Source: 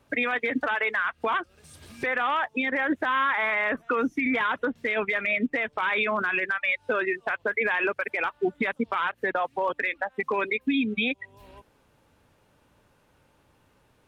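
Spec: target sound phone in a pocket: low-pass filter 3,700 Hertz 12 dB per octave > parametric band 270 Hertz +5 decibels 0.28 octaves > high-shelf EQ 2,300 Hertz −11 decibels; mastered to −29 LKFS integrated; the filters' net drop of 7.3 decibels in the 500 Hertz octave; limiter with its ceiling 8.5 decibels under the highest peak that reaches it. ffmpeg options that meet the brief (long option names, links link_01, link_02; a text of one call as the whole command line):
ffmpeg -i in.wav -af "equalizer=frequency=500:width_type=o:gain=-9,alimiter=level_in=1dB:limit=-24dB:level=0:latency=1,volume=-1dB,lowpass=3700,equalizer=frequency=270:width_type=o:width=0.28:gain=5,highshelf=frequency=2300:gain=-11,volume=6.5dB" out.wav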